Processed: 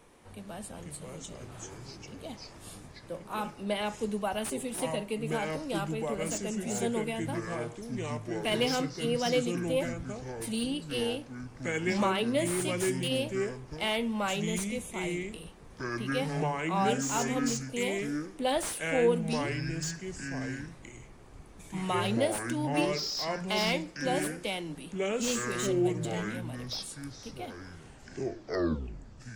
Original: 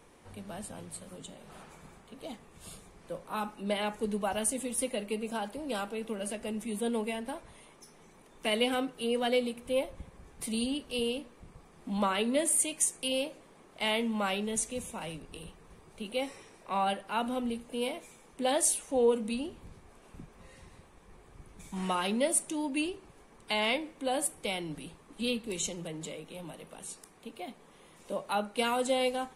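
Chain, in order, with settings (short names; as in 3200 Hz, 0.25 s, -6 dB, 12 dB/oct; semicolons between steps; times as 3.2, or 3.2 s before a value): tape stop at the end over 1.67 s; echoes that change speed 0.372 s, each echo -5 st, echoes 2; slew limiter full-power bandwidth 140 Hz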